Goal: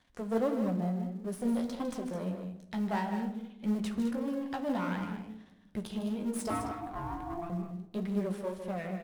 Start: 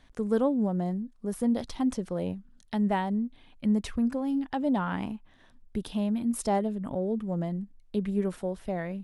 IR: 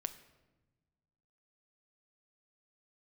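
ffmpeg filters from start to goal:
-filter_complex "[0:a]aeval=exprs='if(lt(val(0),0),0.251*val(0),val(0))':c=same,highpass=f=93:p=1,asettb=1/sr,asplit=3[a][b][c];[a]atrim=end=6.504[d];[b]atrim=start=6.5:end=7.5,asetpts=PTS-STARTPTS,afade=t=in:d=0.004:c=qsin,afade=t=out:st=0.996:d=0.004:c=qsin,aeval=exprs='val(0)*sin(2*PI*510*n/s)':c=same[e];[c]atrim=start=7.496[f];[d][e]acrossfade=d=0.004:c1=hsin:c2=qsin[g];[g][f]acrossfade=d=0.004:c1=qsin:c2=hsin,aecho=1:1:154.5|209.9:0.316|0.316,flanger=delay=9.5:depth=9.1:regen=-30:speed=1.6:shape=sinusoidal,asplit=2[h][i];[i]acrusher=bits=5:mode=log:mix=0:aa=0.000001,volume=-6.5dB[j];[h][j]amix=inputs=2:normalize=0[k];[1:a]atrim=start_sample=2205,asetrate=52920,aresample=44100[l];[k][l]afir=irnorm=-1:irlink=0,volume=2.5dB"

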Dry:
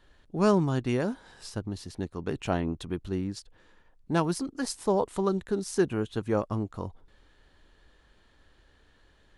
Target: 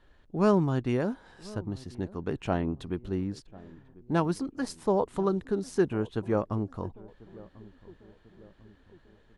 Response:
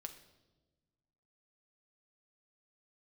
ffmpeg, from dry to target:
-filter_complex "[0:a]highshelf=f=3.6k:g=-9.5,asplit=2[a][b];[b]adelay=1044,lowpass=f=810:p=1,volume=-20dB,asplit=2[c][d];[d]adelay=1044,lowpass=f=810:p=1,volume=0.55,asplit=2[e][f];[f]adelay=1044,lowpass=f=810:p=1,volume=0.55,asplit=2[g][h];[h]adelay=1044,lowpass=f=810:p=1,volume=0.55[i];[a][c][e][g][i]amix=inputs=5:normalize=0"

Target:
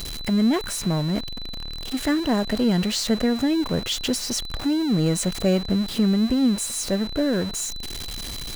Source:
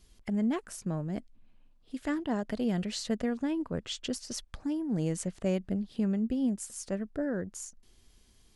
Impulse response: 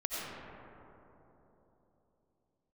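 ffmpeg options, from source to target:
-af "aeval=exprs='val(0)+0.5*0.0158*sgn(val(0))':c=same,aeval=exprs='val(0)+0.00708*sin(2*PI*4000*n/s)':c=same,volume=8dB"

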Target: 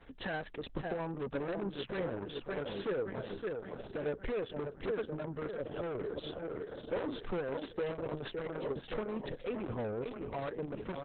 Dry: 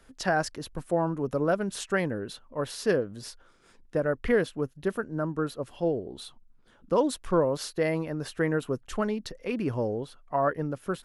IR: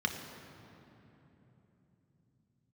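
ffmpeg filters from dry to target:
-filter_complex "[0:a]asplit=3[a][b][c];[a]afade=t=out:st=8.28:d=0.02[d];[b]acompressor=threshold=-32dB:ratio=8,afade=t=in:st=8.28:d=0.02,afade=t=out:st=8.97:d=0.02[e];[c]afade=t=in:st=8.97:d=0.02[f];[d][e][f]amix=inputs=3:normalize=0,equalizer=f=460:t=o:w=0.52:g=6,aresample=8000,aresample=44100,asplit=3[g][h][i];[g]afade=t=out:st=9.55:d=0.02[j];[h]adynamicequalizer=threshold=0.0141:dfrequency=350:dqfactor=0.83:tfrequency=350:tqfactor=0.83:attack=5:release=100:ratio=0.375:range=2:mode=cutabove:tftype=bell,afade=t=in:st=9.55:d=0.02,afade=t=out:st=10:d=0.02[k];[i]afade=t=in:st=10:d=0.02[l];[j][k][l]amix=inputs=3:normalize=0,aecho=1:1:565|1130|1695|2260|2825|3390:0.282|0.155|0.0853|0.0469|0.0258|0.0142,alimiter=limit=-20.5dB:level=0:latency=1:release=264,asettb=1/sr,asplit=3[m][n][o];[m]atrim=end=6.224[p];[n]atrim=start=6.22:end=7.31,asetpts=PTS-STARTPTS,afade=t=in:d=0.004:c=qsin,afade=t=out:st=1.086:d=0.004:c=qsin,asplit=2[q][r];[r]adelay=42,volume=-3.5dB[s];[q][s]amix=inputs=2:normalize=0,atrim=end_sample=48069[t];[o]atrim=start=7.306[u];[p][t]acrossfade=d=0.004:c1=hsin:c2=qsin[v];[v][u]acrossfade=d=0.004:c1=qsin:c2=hsin,asoftclip=type=tanh:threshold=-31.5dB,volume=1dB" -ar 48000 -c:a libopus -b:a 6k

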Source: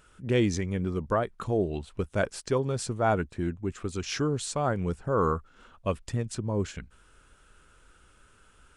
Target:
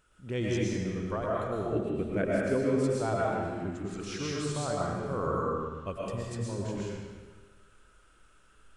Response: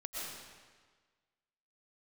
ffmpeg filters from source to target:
-filter_complex "[0:a]asettb=1/sr,asplit=3[a][b][c];[a]atrim=end=1.724[d];[b]atrim=start=1.72:end=2.84,asetpts=PTS-STARTPTS,afade=t=in:d=0.004:c=qsin,afade=t=out:st=1.116:d=0.004:c=qsin,equalizer=f=250:t=o:w=1:g=11,equalizer=f=500:t=o:w=1:g=4,equalizer=f=1k:t=o:w=1:g=-6,equalizer=f=2k:t=o:w=1:g=9,equalizer=f=4k:t=o:w=1:g=-8,equalizer=f=8k:t=o:w=1:g=-4[e];[c]atrim=start=2.836[f];[d][e]acrossfade=d=0.004:c1=hsin:c2=qsin[g];[g][f]acrossfade=d=0.004:c1=qsin:c2=hsin[h];[1:a]atrim=start_sample=2205[i];[h][i]afir=irnorm=-1:irlink=0,volume=-4dB"

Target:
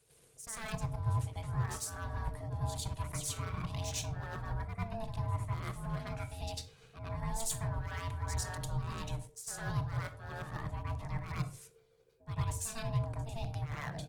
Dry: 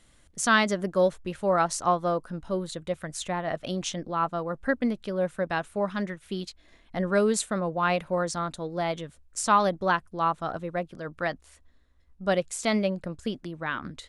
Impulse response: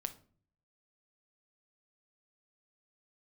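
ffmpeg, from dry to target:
-filter_complex "[0:a]aeval=exprs='if(lt(val(0),0),0.708*val(0),val(0))':c=same,areverse,acompressor=threshold=-34dB:ratio=16,areverse,asoftclip=type=hard:threshold=-30dB,crystalizer=i=2:c=0,aeval=exprs='val(0)*sin(2*PI*450*n/s)':c=same,lowshelf=f=180:t=q:w=3:g=9.5,asplit=2[a][b];[b]adelay=99,lowpass=f=2.2k:p=1,volume=-22dB,asplit=2[c][d];[d]adelay=99,lowpass=f=2.2k:p=1,volume=0.23[e];[a][c][e]amix=inputs=3:normalize=0,asplit=2[f][g];[1:a]atrim=start_sample=2205,atrim=end_sample=6615,adelay=98[h];[g][h]afir=irnorm=-1:irlink=0,volume=8dB[i];[f][i]amix=inputs=2:normalize=0,volume=-9dB" -ar 48000 -c:a libopus -b:a 20k

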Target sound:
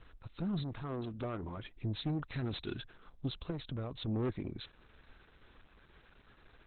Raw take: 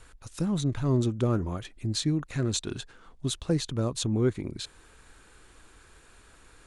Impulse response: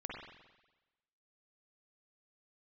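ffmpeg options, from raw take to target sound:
-filter_complex "[0:a]asplit=3[a][b][c];[a]afade=t=out:st=2.2:d=0.02[d];[b]aemphasis=mode=production:type=75kf,afade=t=in:st=2.2:d=0.02,afade=t=out:st=2.74:d=0.02[e];[c]afade=t=in:st=2.74:d=0.02[f];[d][e][f]amix=inputs=3:normalize=0,asoftclip=type=tanh:threshold=-25.5dB,asettb=1/sr,asplit=3[g][h][i];[g]atrim=end=0.634[j];[h]atrim=start=0.63:end=1.57,asetpts=PTS-STARTPTS,afade=t=in:d=0.004:c=qsin,afade=t=out:st=0.936:d=0.004:c=qsin,lowshelf=f=260:g=-7[k];[i]atrim=start=1.566[l];[j][k]acrossfade=d=0.004:c1=hsin:c2=qsin[m];[m][l]acrossfade=d=0.004:c1=qsin:c2=hsin,asettb=1/sr,asplit=3[n][o][p];[n]atrim=end=3.504[q];[o]atrim=start=3.5:end=4.08,asetpts=PTS-STARTPTS,afade=t=in:d=0.004:c=qsin,afade=t=out:st=0.576:d=0.004:c=qsin,acompressor=threshold=-31dB:ratio=8[r];[p]atrim=start=4.076[s];[q][r]acrossfade=d=0.004:c1=hsin:c2=qsin[t];[t][s]acrossfade=d=0.004:c1=qsin:c2=hsin,volume=-3dB" -ar 48000 -c:a libopus -b:a 8k

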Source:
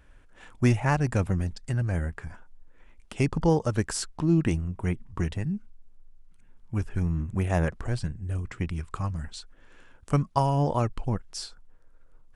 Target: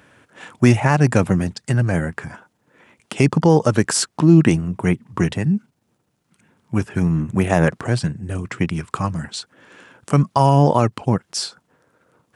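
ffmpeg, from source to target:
-af "highpass=f=120:w=0.5412,highpass=f=120:w=1.3066,alimiter=level_in=13.5dB:limit=-1dB:release=50:level=0:latency=1,volume=-1.5dB"

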